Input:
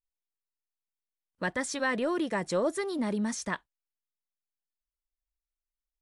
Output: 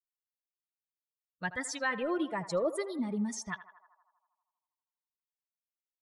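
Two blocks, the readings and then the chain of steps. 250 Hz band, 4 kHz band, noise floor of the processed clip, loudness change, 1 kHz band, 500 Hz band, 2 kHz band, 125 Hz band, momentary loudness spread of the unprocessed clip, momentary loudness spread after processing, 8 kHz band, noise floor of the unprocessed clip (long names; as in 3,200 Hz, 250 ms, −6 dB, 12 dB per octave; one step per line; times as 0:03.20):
−3.5 dB, −4.0 dB, below −85 dBFS, −3.0 dB, −3.0 dB, −3.0 dB, −2.5 dB, −3.5 dB, 6 LU, 8 LU, −3.0 dB, below −85 dBFS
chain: spectral dynamics exaggerated over time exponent 2
feedback echo with a band-pass in the loop 80 ms, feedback 72%, band-pass 890 Hz, level −12.5 dB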